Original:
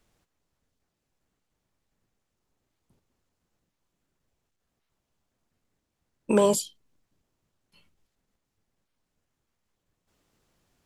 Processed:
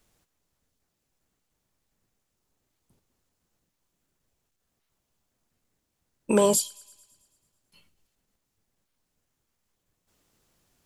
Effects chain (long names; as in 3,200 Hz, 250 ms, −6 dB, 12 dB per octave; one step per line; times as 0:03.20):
high-shelf EQ 5,800 Hz +8 dB
delay with a high-pass on its return 110 ms, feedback 62%, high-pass 1,800 Hz, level −22 dB